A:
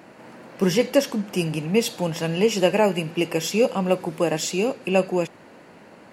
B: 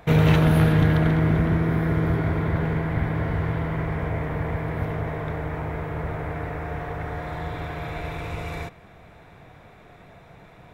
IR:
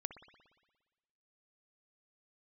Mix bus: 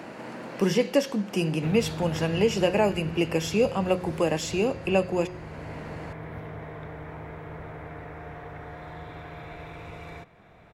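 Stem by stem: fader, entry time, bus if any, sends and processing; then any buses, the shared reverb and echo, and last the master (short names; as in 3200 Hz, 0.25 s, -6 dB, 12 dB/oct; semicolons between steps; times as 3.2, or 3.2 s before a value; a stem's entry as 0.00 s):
-2.0 dB, 0.00 s, no send, de-hum 180.9 Hz, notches 36
-16.5 dB, 1.55 s, no send, dry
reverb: off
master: high shelf 8500 Hz -8.5 dB; three-band squash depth 40%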